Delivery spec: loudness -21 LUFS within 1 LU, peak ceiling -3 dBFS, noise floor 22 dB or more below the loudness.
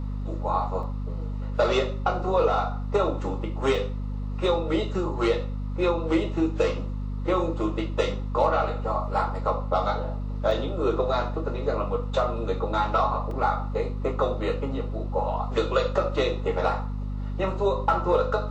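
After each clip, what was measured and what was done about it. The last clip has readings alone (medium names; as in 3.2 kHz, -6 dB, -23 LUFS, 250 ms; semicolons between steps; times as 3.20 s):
dropouts 4; longest dropout 2.2 ms; hum 50 Hz; highest harmonic 250 Hz; hum level -28 dBFS; loudness -26.5 LUFS; peak level -9.0 dBFS; loudness target -21.0 LUFS
-> interpolate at 0.83/3.75/10.51/13.31 s, 2.2 ms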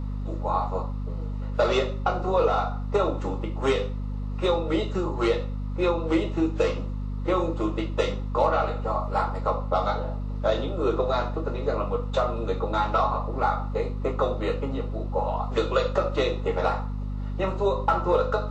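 dropouts 0; hum 50 Hz; highest harmonic 250 Hz; hum level -28 dBFS
-> de-hum 50 Hz, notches 5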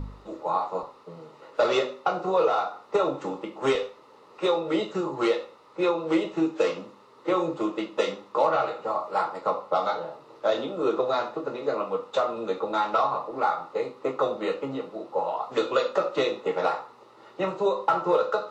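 hum not found; loudness -27.0 LUFS; peak level -10.0 dBFS; loudness target -21.0 LUFS
-> trim +6 dB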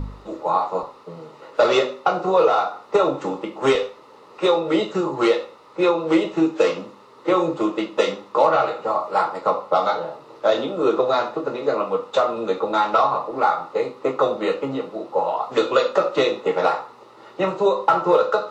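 loudness -21.0 LUFS; peak level -4.0 dBFS; noise floor -47 dBFS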